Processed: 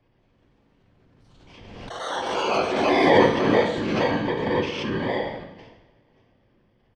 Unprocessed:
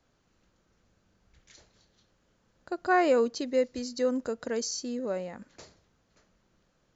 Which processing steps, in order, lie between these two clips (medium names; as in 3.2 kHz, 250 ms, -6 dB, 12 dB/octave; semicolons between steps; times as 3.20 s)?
bit-reversed sample order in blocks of 32 samples; low-pass 3.3 kHz 24 dB/octave; doubling 13 ms -7.5 dB; de-hum 129.1 Hz, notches 2; whisper effect; ever faster or slower copies 190 ms, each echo +5 st, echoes 2, each echo -6 dB; two-slope reverb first 0.76 s, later 3 s, from -26 dB, DRR 1 dB; swell ahead of each attack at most 33 dB/s; trim +4.5 dB